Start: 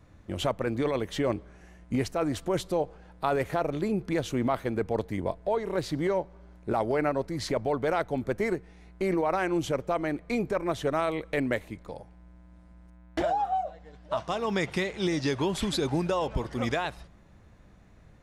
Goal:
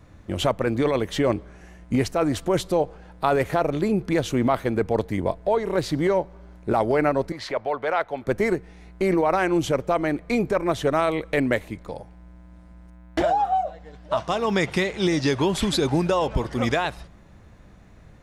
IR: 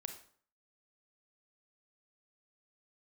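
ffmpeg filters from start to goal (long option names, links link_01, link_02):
-filter_complex "[0:a]asettb=1/sr,asplit=3[link_01][link_02][link_03];[link_01]atrim=end=7.324[link_04];[link_02]atrim=start=7.32:end=8.27,asetpts=PTS-STARTPTS,afade=type=in:duration=0.004:curve=qsin,afade=type=out:start_time=0.946:duration=0.004:curve=qsin,acrossover=split=500 4100:gain=0.178 1 0.2[link_05][link_06][link_07];[link_05][link_06][link_07]amix=inputs=3:normalize=0[link_08];[link_03]atrim=start=8.266[link_09];[link_04][link_08]acrossfade=duration=0.004:curve1=hsin:curve2=qsin[link_10];[link_10][link_09]acrossfade=duration=0.004:curve1=qsin:curve2=hsin,volume=6dB"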